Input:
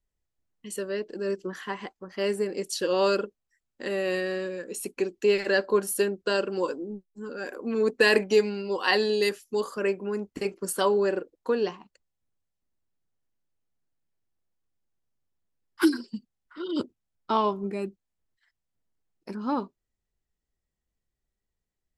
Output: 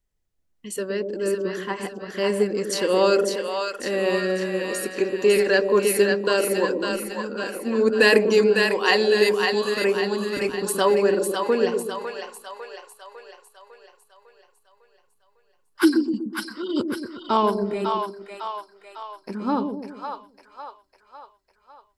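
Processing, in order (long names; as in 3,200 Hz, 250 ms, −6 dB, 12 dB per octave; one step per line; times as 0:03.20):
echo with a time of its own for lows and highs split 590 Hz, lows 123 ms, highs 552 ms, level −4 dB
level +4 dB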